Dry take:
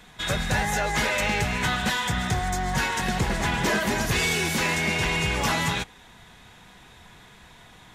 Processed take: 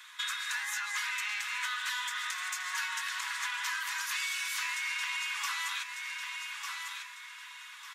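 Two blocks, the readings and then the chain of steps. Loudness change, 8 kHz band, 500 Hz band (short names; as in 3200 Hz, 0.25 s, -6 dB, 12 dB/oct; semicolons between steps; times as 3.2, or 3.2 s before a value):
-9.0 dB, -6.0 dB, under -40 dB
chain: steep high-pass 1000 Hz 72 dB/oct; feedback echo 1.198 s, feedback 30%, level -14 dB; compressor 4:1, threshold -35 dBFS, peak gain reduction 11 dB; gain +1.5 dB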